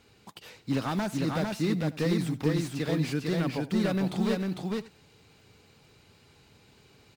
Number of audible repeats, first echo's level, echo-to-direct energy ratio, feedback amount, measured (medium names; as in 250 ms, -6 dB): 3, -19.0 dB, -3.0 dB, no regular repeats